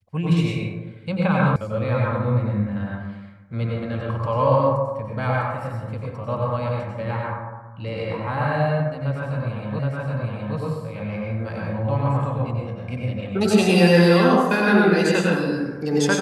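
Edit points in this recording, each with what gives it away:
0:01.56: cut off before it has died away
0:09.79: the same again, the last 0.77 s

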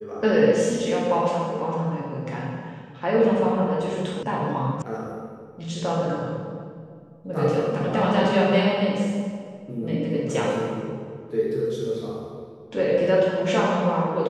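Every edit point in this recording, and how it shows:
0:04.23: cut off before it has died away
0:04.82: cut off before it has died away

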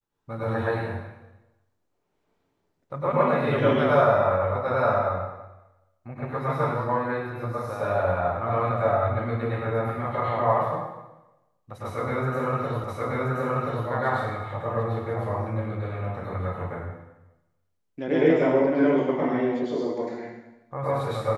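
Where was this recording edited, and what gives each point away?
0:12.84: the same again, the last 1.03 s

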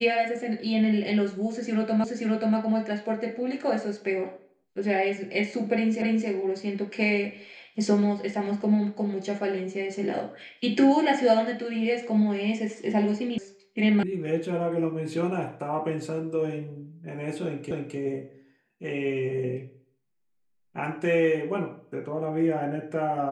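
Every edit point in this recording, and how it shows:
0:02.04: the same again, the last 0.53 s
0:06.02: the same again, the last 0.27 s
0:13.38: cut off before it has died away
0:14.03: cut off before it has died away
0:17.71: the same again, the last 0.26 s

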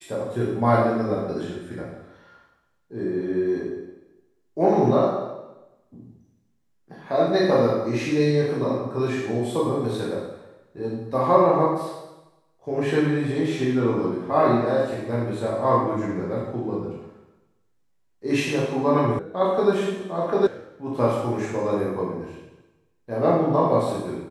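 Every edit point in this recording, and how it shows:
0:19.19: cut off before it has died away
0:20.47: cut off before it has died away

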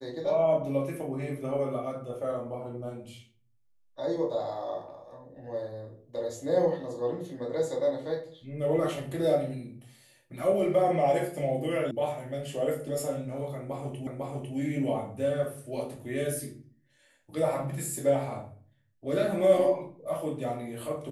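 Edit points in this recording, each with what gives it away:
0:11.91: cut off before it has died away
0:14.07: the same again, the last 0.5 s

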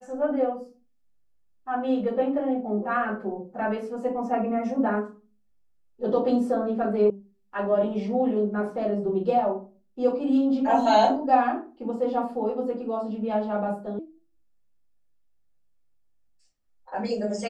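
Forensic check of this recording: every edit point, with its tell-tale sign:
0:07.10: cut off before it has died away
0:13.99: cut off before it has died away

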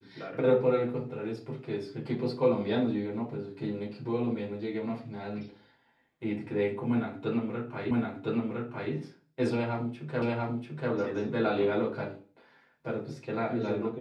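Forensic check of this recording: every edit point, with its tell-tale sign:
0:07.91: the same again, the last 1.01 s
0:10.22: the same again, the last 0.69 s

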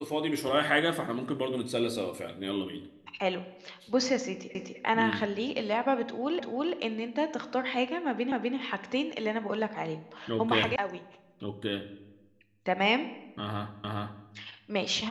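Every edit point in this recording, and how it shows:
0:04.55: the same again, the last 0.25 s
0:06.40: the same again, the last 0.34 s
0:08.32: the same again, the last 0.25 s
0:10.76: cut off before it has died away
0:13.84: the same again, the last 0.41 s

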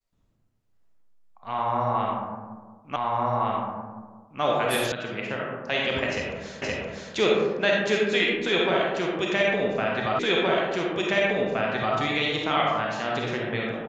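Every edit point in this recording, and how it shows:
0:02.96: the same again, the last 1.46 s
0:04.92: cut off before it has died away
0:06.62: the same again, the last 0.52 s
0:10.19: the same again, the last 1.77 s

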